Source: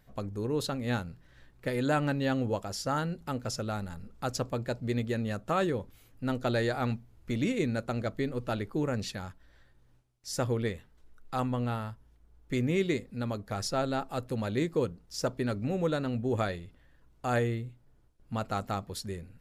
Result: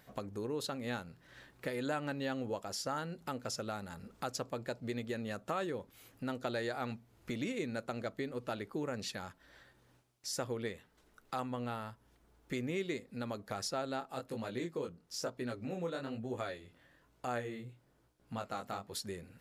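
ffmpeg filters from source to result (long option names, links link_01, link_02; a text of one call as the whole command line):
ffmpeg -i in.wav -filter_complex "[0:a]asplit=3[link_01][link_02][link_03];[link_01]afade=type=out:start_time=14:duration=0.02[link_04];[link_02]flanger=delay=16:depth=7.9:speed=1.1,afade=type=in:start_time=14:duration=0.02,afade=type=out:start_time=18.92:duration=0.02[link_05];[link_03]afade=type=in:start_time=18.92:duration=0.02[link_06];[link_04][link_05][link_06]amix=inputs=3:normalize=0,highpass=frequency=290:poles=1,acompressor=threshold=-50dB:ratio=2,volume=6dB" out.wav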